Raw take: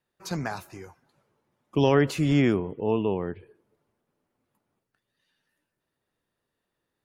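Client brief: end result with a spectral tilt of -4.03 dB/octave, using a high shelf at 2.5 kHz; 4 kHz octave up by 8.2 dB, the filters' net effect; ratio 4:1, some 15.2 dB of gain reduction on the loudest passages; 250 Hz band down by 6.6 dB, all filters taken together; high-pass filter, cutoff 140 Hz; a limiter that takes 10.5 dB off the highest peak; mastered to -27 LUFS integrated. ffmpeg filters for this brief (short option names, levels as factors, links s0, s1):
-af "highpass=140,equalizer=f=250:t=o:g=-8,highshelf=f=2500:g=7.5,equalizer=f=4000:t=o:g=4.5,acompressor=threshold=0.0158:ratio=4,volume=6.68,alimiter=limit=0.168:level=0:latency=1"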